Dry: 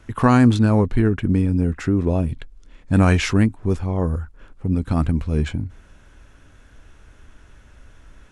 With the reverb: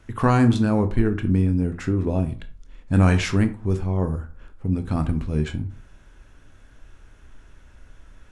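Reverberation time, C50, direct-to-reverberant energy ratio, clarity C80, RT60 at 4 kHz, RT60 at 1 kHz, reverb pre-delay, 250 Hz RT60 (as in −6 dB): 0.45 s, 14.0 dB, 9.0 dB, 19.0 dB, 0.20 s, 0.45 s, 18 ms, 0.40 s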